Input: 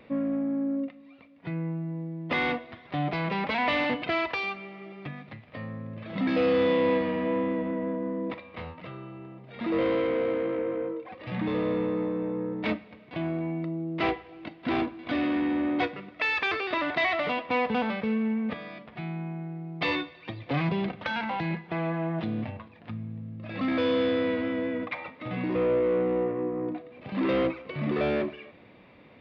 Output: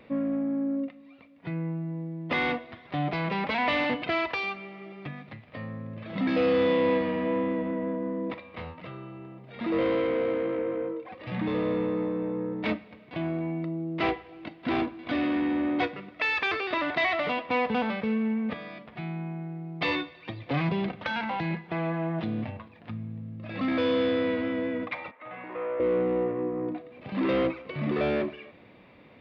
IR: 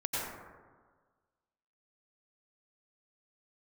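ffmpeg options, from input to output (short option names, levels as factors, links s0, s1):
-filter_complex "[0:a]asettb=1/sr,asplit=3[s0][s1][s2];[s0]atrim=end=25.114[s3];[s1]atrim=start=25.11:end=25.8,asetpts=PTS-STARTPTS,afade=t=in:d=0.004:c=qsin,afade=t=out:st=0.686:d=0.004:c=qsin,acrossover=split=550 2400:gain=0.0891 1 0.0708[s4][s5][s6];[s4][s5][s6]amix=inputs=3:normalize=0[s7];[s2]atrim=start=25.796[s8];[s3][s7]acrossfade=d=0.004:c1=hsin:c2=qsin[s9];[s9][s8]acrossfade=d=0.004:c1=qsin:c2=hsin"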